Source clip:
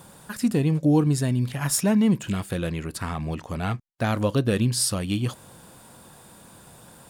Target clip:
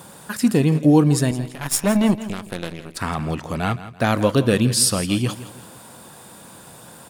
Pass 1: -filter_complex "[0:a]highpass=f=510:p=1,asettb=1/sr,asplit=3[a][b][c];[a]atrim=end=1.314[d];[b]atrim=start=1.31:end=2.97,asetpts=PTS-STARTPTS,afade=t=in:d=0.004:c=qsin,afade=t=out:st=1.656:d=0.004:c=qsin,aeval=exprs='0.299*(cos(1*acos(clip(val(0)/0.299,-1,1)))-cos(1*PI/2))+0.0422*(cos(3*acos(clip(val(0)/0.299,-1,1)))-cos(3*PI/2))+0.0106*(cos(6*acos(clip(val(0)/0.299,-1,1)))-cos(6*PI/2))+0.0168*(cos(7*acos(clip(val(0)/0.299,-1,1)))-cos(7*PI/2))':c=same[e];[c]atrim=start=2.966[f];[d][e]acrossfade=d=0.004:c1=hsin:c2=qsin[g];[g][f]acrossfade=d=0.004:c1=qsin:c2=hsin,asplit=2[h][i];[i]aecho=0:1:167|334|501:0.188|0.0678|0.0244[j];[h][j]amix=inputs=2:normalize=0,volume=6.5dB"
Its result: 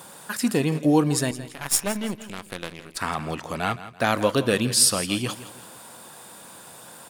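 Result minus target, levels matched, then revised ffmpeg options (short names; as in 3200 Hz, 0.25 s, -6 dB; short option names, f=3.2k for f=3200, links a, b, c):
125 Hz band -5.0 dB
-filter_complex "[0:a]highpass=f=140:p=1,asettb=1/sr,asplit=3[a][b][c];[a]atrim=end=1.314[d];[b]atrim=start=1.31:end=2.97,asetpts=PTS-STARTPTS,afade=t=in:d=0.004:c=qsin,afade=t=out:st=1.656:d=0.004:c=qsin,aeval=exprs='0.299*(cos(1*acos(clip(val(0)/0.299,-1,1)))-cos(1*PI/2))+0.0422*(cos(3*acos(clip(val(0)/0.299,-1,1)))-cos(3*PI/2))+0.0106*(cos(6*acos(clip(val(0)/0.299,-1,1)))-cos(6*PI/2))+0.0168*(cos(7*acos(clip(val(0)/0.299,-1,1)))-cos(7*PI/2))':c=same[e];[c]atrim=start=2.966[f];[d][e]acrossfade=d=0.004:c1=hsin:c2=qsin[g];[g][f]acrossfade=d=0.004:c1=qsin:c2=hsin,asplit=2[h][i];[i]aecho=0:1:167|334|501:0.188|0.0678|0.0244[j];[h][j]amix=inputs=2:normalize=0,volume=6.5dB"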